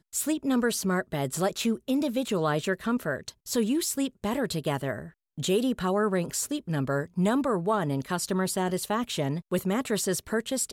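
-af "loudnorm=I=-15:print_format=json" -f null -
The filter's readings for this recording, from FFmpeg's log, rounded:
"input_i" : "-28.3",
"input_tp" : "-14.3",
"input_lra" : "1.1",
"input_thresh" : "-38.3",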